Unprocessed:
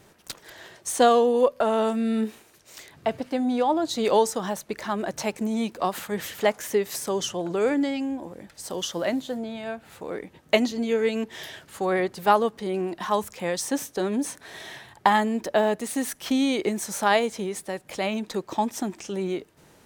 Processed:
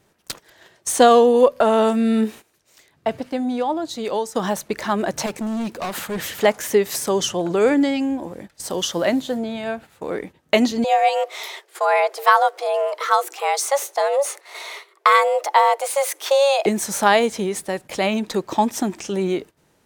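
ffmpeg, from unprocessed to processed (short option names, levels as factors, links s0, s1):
-filter_complex "[0:a]asettb=1/sr,asplit=3[s0][s1][s2];[s0]atrim=end=5.264[s3];[s1]atrim=start=5.26:end=6.42,asetpts=PTS-STARTPTS,afade=t=in:d=0.004:c=qsin,afade=t=out:st=1.156:d=0.004:c=qsin,volume=28.2,asoftclip=hard,volume=0.0355[s4];[s2]atrim=start=6.416[s5];[s3][s4]acrossfade=d=0.004:c1=hsin:c2=qsin[s6];[s6][s5]acrossfade=d=0.004:c1=qsin:c2=hsin,asettb=1/sr,asplit=3[s7][s8][s9];[s7]atrim=end=10.844[s10];[s8]atrim=start=10.84:end=16.66,asetpts=PTS-STARTPTS,afade=t=in:d=0.004:c=qsin,afade=t=out:st=5.816:d=0.004:c=qsin,afreqshift=280[s11];[s9]atrim=start=16.656[s12];[s10][s11]acrossfade=d=0.004:c1=hsin:c2=qsin[s13];[s13][s12]acrossfade=d=0.004:c1=qsin:c2=hsin,asplit=2[s14][s15];[s14]atrim=end=4.35,asetpts=PTS-STARTPTS,afade=t=out:st=2.14:d=2.21:silence=0.251189[s16];[s15]atrim=start=4.35,asetpts=PTS-STARTPTS,afade=t=in:d=0.004:c=hsin:silence=0.251189[s17];[s16][s17]concat=n=2:v=0:a=1,agate=range=0.224:threshold=0.00794:ratio=16:detection=peak,alimiter=level_in=2.51:limit=0.891:release=50:level=0:latency=1,volume=0.841"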